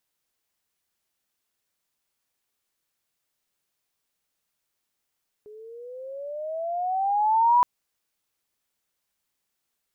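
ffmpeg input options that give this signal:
ffmpeg -f lavfi -i "aevalsrc='pow(10,(-14+28*(t/2.17-1))/20)*sin(2*PI*417*2.17/(15*log(2)/12)*(exp(15*log(2)/12*t/2.17)-1))':duration=2.17:sample_rate=44100" out.wav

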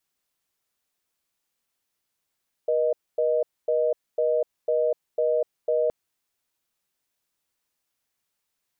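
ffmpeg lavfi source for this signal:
ffmpeg -f lavfi -i "aevalsrc='0.075*(sin(2*PI*480*t)+sin(2*PI*620*t))*clip(min(mod(t,0.5),0.25-mod(t,0.5))/0.005,0,1)':duration=3.22:sample_rate=44100" out.wav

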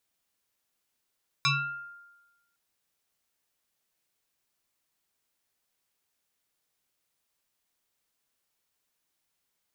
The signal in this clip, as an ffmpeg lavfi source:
ffmpeg -f lavfi -i "aevalsrc='0.1*pow(10,-3*t/1.13)*sin(2*PI*1400*t+3.7*pow(10,-3*t/0.65)*sin(2*PI*0.9*1400*t))':duration=1.11:sample_rate=44100" out.wav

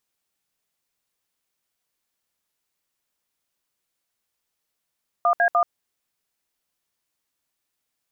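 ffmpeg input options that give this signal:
ffmpeg -f lavfi -i "aevalsrc='0.126*clip(min(mod(t,0.149),0.082-mod(t,0.149))/0.002,0,1)*(eq(floor(t/0.149),0)*(sin(2*PI*697*mod(t,0.149))+sin(2*PI*1209*mod(t,0.149)))+eq(floor(t/0.149),1)*(sin(2*PI*697*mod(t,0.149))+sin(2*PI*1633*mod(t,0.149)))+eq(floor(t/0.149),2)*(sin(2*PI*697*mod(t,0.149))+sin(2*PI*1209*mod(t,0.149))))':duration=0.447:sample_rate=44100" out.wav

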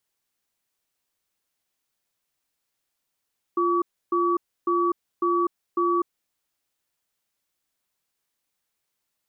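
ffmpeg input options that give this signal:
ffmpeg -f lavfi -i "aevalsrc='0.0794*(sin(2*PI*348*t)+sin(2*PI*1140*t))*clip(min(mod(t,0.55),0.25-mod(t,0.55))/0.005,0,1)':duration=2.7:sample_rate=44100" out.wav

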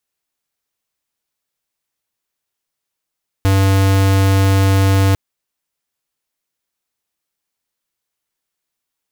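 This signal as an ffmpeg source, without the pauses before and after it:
ffmpeg -f lavfi -i "aevalsrc='0.251*(2*lt(mod(97*t,1),0.5)-1)':duration=1.7:sample_rate=44100" out.wav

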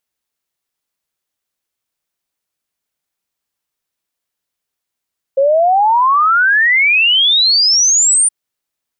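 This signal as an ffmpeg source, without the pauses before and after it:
ffmpeg -f lavfi -i "aevalsrc='0.398*clip(min(t,2.92-t)/0.01,0,1)*sin(2*PI*530*2.92/log(9300/530)*(exp(log(9300/530)*t/2.92)-1))':duration=2.92:sample_rate=44100" out.wav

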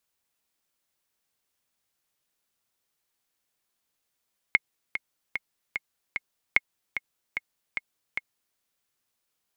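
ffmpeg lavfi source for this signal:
ffmpeg -f lavfi -i "aevalsrc='pow(10,(-5-10.5*gte(mod(t,5*60/149),60/149))/20)*sin(2*PI*2160*mod(t,60/149))*exp(-6.91*mod(t,60/149)/0.03)':duration=4.02:sample_rate=44100" out.wav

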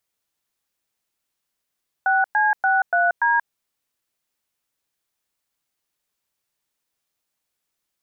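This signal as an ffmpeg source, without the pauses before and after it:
ffmpeg -f lavfi -i "aevalsrc='0.126*clip(min(mod(t,0.289),0.182-mod(t,0.289))/0.002,0,1)*(eq(floor(t/0.289),0)*(sin(2*PI*770*mod(t,0.289))+sin(2*PI*1477*mod(t,0.289)))+eq(floor(t/0.289),1)*(sin(2*PI*852*mod(t,0.289))+sin(2*PI*1633*mod(t,0.289)))+eq(floor(t/0.289),2)*(sin(2*PI*770*mod(t,0.289))+sin(2*PI*1477*mod(t,0.289)))+eq(floor(t/0.289),3)*(sin(2*PI*697*mod(t,0.289))+sin(2*PI*1477*mod(t,0.289)))+eq(floor(t/0.289),4)*(sin(2*PI*941*mod(t,0.289))+sin(2*PI*1633*mod(t,0.289))))':duration=1.445:sample_rate=44100" out.wav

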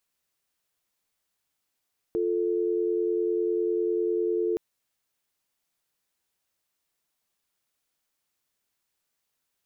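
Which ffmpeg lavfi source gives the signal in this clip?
ffmpeg -f lavfi -i "aevalsrc='0.0501*(sin(2*PI*350*t)+sin(2*PI*440*t))':duration=2.42:sample_rate=44100" out.wav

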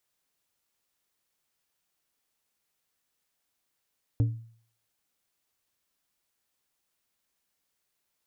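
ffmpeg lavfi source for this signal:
ffmpeg -f lavfi -i "aevalsrc='0.126*pow(10,-3*t/0.52)*sin(2*PI*114*t)+0.0398*pow(10,-3*t/0.274)*sin(2*PI*285*t)+0.0126*pow(10,-3*t/0.197)*sin(2*PI*456*t)+0.00398*pow(10,-3*t/0.169)*sin(2*PI*570*t)+0.00126*pow(10,-3*t/0.14)*sin(2*PI*741*t)':duration=0.89:sample_rate=44100" out.wav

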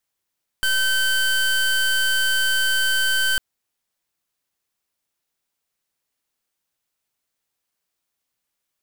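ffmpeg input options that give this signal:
ffmpeg -f lavfi -i "aevalsrc='0.106*(2*lt(mod(1540*t,1),0.26)-1)':duration=2.75:sample_rate=44100" out.wav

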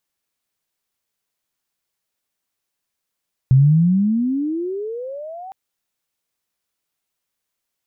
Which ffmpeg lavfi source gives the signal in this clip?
ffmpeg -f lavfi -i "aevalsrc='pow(10,(-7.5-24*t/2.01)/20)*sin(2*PI*127*2.01/(31.5*log(2)/12)*(exp(31.5*log(2)/12*t/2.01)-1))':duration=2.01:sample_rate=44100" out.wav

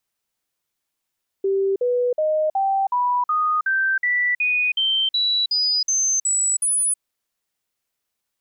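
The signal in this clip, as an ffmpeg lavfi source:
ffmpeg -f lavfi -i "aevalsrc='0.141*clip(min(mod(t,0.37),0.32-mod(t,0.37))/0.005,0,1)*sin(2*PI*390*pow(2,floor(t/0.37)/3)*mod(t,0.37))':duration=5.55:sample_rate=44100" out.wav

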